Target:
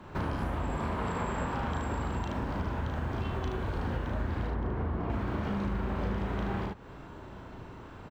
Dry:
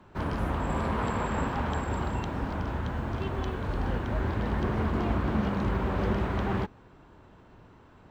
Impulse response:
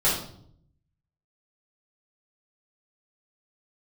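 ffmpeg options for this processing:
-filter_complex "[0:a]asettb=1/sr,asplit=3[a][b][c];[a]atrim=end=4.474[d];[b]atrim=start=4.47:end=5.1,asetpts=PTS-STARTPTS,afade=t=in:d=0.004:c=qsin,afade=t=out:st=0.626:d=0.004:c=qsin,lowpass=f=1.2k:p=1[e];[c]atrim=start=5.096[f];[d][e]acrossfade=d=0.004:c1=hsin:c2=qsin[g];[g][f]acrossfade=d=0.004:c1=qsin:c2=hsin,aecho=1:1:35|75:0.708|0.596,acompressor=threshold=-37dB:ratio=4,volume=5.5dB"

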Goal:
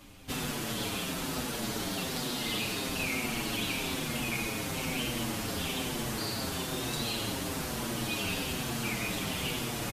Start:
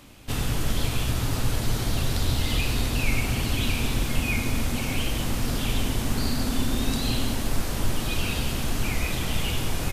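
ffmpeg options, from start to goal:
-filter_complex "[0:a]afftfilt=real='re*lt(hypot(re,im),0.282)':imag='im*lt(hypot(re,im),0.282)':win_size=1024:overlap=0.75,asplit=2[a][b];[b]adelay=6.9,afreqshift=-1.1[c];[a][c]amix=inputs=2:normalize=1"

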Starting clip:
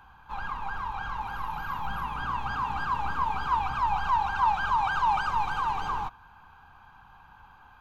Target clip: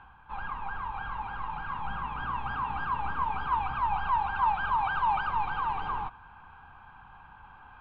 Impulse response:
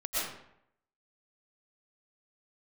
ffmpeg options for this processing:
-af "areverse,acompressor=mode=upward:threshold=-42dB:ratio=2.5,areverse,lowpass=f=3.2k:w=0.5412,lowpass=f=3.2k:w=1.3066,volume=-2dB"

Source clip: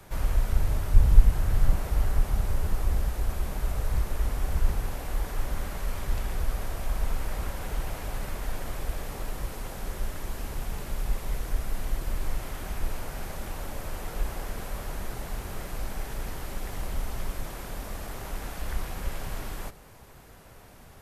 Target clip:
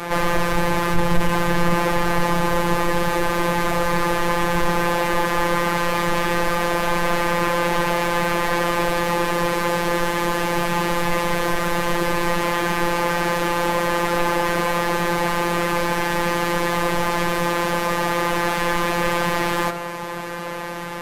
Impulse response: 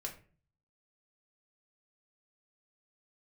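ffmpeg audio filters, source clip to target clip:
-filter_complex "[0:a]asplit=2[a][b];[b]highpass=f=720:p=1,volume=42dB,asoftclip=type=tanh:threshold=-2.5dB[c];[a][c]amix=inputs=2:normalize=0,lowpass=f=1.1k:p=1,volume=-6dB,afftfilt=real='hypot(re,im)*cos(PI*b)':imag='0':win_size=1024:overlap=0.75,bandreject=f=76.59:t=h:w=4,bandreject=f=153.18:t=h:w=4,bandreject=f=229.77:t=h:w=4,bandreject=f=306.36:t=h:w=4,bandreject=f=382.95:t=h:w=4,bandreject=f=459.54:t=h:w=4,bandreject=f=536.13:t=h:w=4,bandreject=f=612.72:t=h:w=4,bandreject=f=689.31:t=h:w=4,bandreject=f=765.9:t=h:w=4,bandreject=f=842.49:t=h:w=4,bandreject=f=919.08:t=h:w=4,bandreject=f=995.67:t=h:w=4,bandreject=f=1.07226k:t=h:w=4,bandreject=f=1.14885k:t=h:w=4,bandreject=f=1.22544k:t=h:w=4,bandreject=f=1.30203k:t=h:w=4,bandreject=f=1.37862k:t=h:w=4,bandreject=f=1.45521k:t=h:w=4,bandreject=f=1.5318k:t=h:w=4,bandreject=f=1.60839k:t=h:w=4,bandreject=f=1.68498k:t=h:w=4,bandreject=f=1.76157k:t=h:w=4,bandreject=f=1.83816k:t=h:w=4"

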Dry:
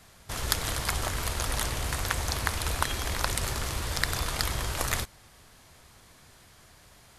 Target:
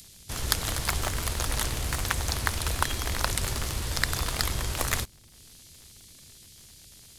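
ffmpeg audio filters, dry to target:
-filter_complex "[0:a]acrossover=split=440|3000[a][b][c];[b]acrusher=bits=6:dc=4:mix=0:aa=0.000001[d];[c]acompressor=mode=upward:threshold=-45dB:ratio=2.5[e];[a][d][e]amix=inputs=3:normalize=0,volume=1.5dB"

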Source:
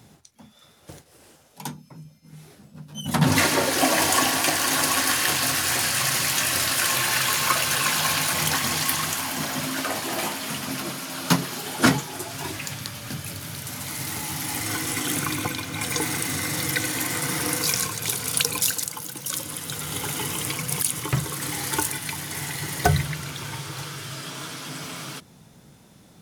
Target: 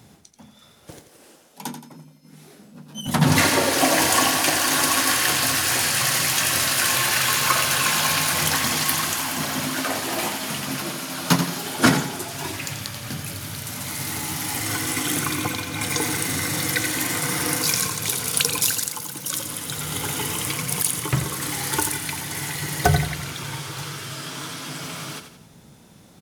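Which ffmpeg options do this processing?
-filter_complex "[0:a]asettb=1/sr,asplit=3[a][b][c];[a]atrim=end=0.914[d];[b]atrim=start=0.91:end=3.07,asetpts=PTS-STARTPTS,afade=t=in:d=0.004:c=qsin,afade=t=out:st=2.156:d=0.004:c=qsin,lowshelf=f=160:t=q:w=1.5:g=-10[e];[c]atrim=start=3.066[f];[d][e]acrossfade=d=0.004:c1=hsin:c2=qsin[g];[g][f]acrossfade=d=0.004:c1=qsin:c2=hsin,aecho=1:1:86|172|258|344|430:0.355|0.149|0.0626|0.0263|0.011,volume=1.5dB"

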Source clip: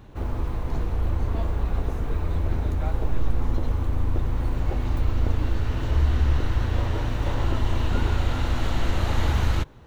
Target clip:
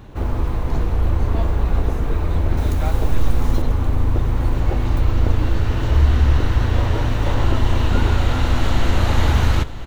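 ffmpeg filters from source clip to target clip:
-filter_complex "[0:a]asettb=1/sr,asplit=3[a][b][c];[a]atrim=end=2.574[d];[b]atrim=start=2.57:end=3.62,asetpts=PTS-STARTPTS,afade=t=in:d=0.004:c=qsin,afade=t=out:st=1.046:d=0.004:c=qsin,highshelf=f=3.9k:g=10.5[e];[c]atrim=start=3.616[f];[d][e]acrossfade=d=0.004:c1=hsin:c2=qsin[g];[g][f]acrossfade=d=0.004:c1=qsin:c2=hsin,asplit=2[h][i];[i]aecho=0:1:988:0.188[j];[h][j]amix=inputs=2:normalize=0,volume=6.5dB"

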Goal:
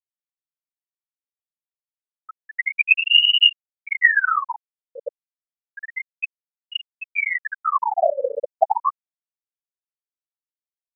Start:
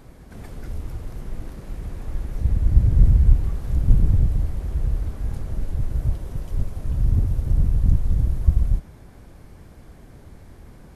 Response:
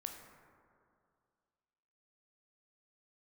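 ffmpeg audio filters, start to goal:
-filter_complex "[0:a]lowpass=1.5k,acrossover=split=210|880[a][b][c];[a]adelay=140[d];[b]adelay=290[e];[d][e][c]amix=inputs=3:normalize=0,afftfilt=real='re*gte(hypot(re,im),1.78)':imag='im*gte(hypot(re,im),1.78)':win_size=1024:overlap=0.75,aeval=exprs='val(0)*sin(2*PI*1700*n/s+1700*0.7/0.3*sin(2*PI*0.3*n/s))':c=same,volume=1dB"

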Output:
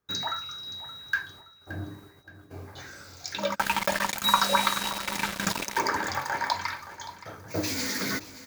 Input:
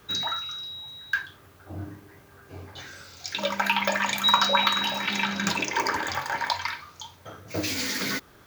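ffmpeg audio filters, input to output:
-filter_complex "[0:a]agate=range=-27dB:threshold=-49dB:ratio=16:detection=peak,equalizer=f=3k:t=o:w=0.75:g=-7.5,asplit=3[a][b][c];[a]afade=t=out:st=3.54:d=0.02[d];[b]aeval=exprs='val(0)*gte(abs(val(0)),0.0501)':c=same,afade=t=in:st=3.54:d=0.02,afade=t=out:st=5.78:d=0.02[e];[c]afade=t=in:st=5.78:d=0.02[f];[d][e][f]amix=inputs=3:normalize=0,aecho=1:1:572|1144|1716:0.168|0.0655|0.0255"

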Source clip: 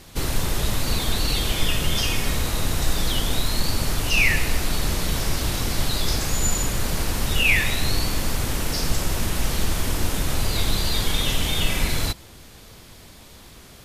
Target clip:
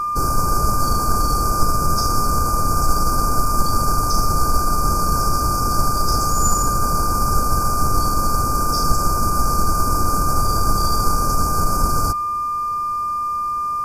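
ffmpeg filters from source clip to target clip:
-af "aeval=exprs='val(0)+0.0708*sin(2*PI*1200*n/s)':c=same,afftfilt=real='re*(1-between(b*sr/4096,1600,4500))':imag='im*(1-between(b*sr/4096,1600,4500))':win_size=4096:overlap=0.75,aeval=exprs='0.473*(cos(1*acos(clip(val(0)/0.473,-1,1)))-cos(1*PI/2))+0.0596*(cos(2*acos(clip(val(0)/0.473,-1,1)))-cos(2*PI/2))':c=same,volume=3.5dB"

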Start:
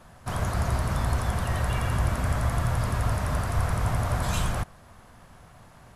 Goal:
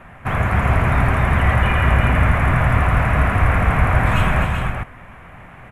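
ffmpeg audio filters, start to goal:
-af "highshelf=f=3.2k:t=q:w=3:g=-12.5,aecho=1:1:265|401:0.447|0.501,asetrate=45938,aresample=44100,volume=8.5dB"

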